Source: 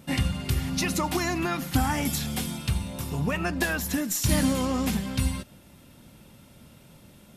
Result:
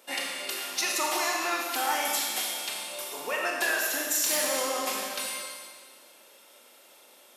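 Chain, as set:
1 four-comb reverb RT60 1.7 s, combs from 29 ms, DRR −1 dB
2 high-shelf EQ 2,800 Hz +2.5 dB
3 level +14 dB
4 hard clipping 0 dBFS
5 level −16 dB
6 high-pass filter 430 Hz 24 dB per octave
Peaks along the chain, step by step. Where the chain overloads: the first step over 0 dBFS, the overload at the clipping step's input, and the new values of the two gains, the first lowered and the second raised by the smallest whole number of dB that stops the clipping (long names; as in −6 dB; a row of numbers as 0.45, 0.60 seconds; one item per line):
−9.0, −7.5, +6.5, 0.0, −16.0, −14.0 dBFS
step 3, 6.5 dB
step 3 +7 dB, step 5 −9 dB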